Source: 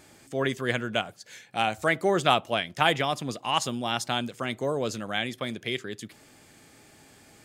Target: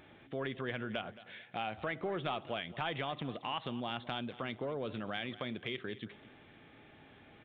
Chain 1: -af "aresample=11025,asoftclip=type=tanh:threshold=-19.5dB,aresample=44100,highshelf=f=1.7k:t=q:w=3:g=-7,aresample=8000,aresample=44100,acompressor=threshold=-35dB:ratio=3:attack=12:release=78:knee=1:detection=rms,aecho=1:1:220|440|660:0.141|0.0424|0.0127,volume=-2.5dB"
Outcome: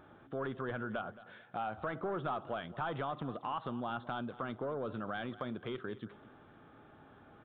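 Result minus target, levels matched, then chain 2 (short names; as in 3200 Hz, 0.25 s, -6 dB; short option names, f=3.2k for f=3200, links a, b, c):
4000 Hz band -9.5 dB; soft clip: distortion +7 dB
-af "aresample=11025,asoftclip=type=tanh:threshold=-12.5dB,aresample=44100,aresample=8000,aresample=44100,acompressor=threshold=-35dB:ratio=3:attack=12:release=78:knee=1:detection=rms,aecho=1:1:220|440|660:0.141|0.0424|0.0127,volume=-2.5dB"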